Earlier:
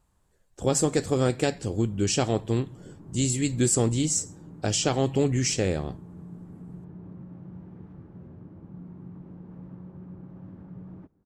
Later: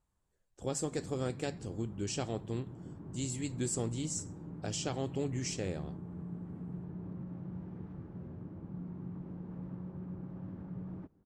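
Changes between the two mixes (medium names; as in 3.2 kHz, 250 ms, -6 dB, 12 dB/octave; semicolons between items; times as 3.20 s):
speech -12.0 dB; master: add low-pass 12 kHz 12 dB/octave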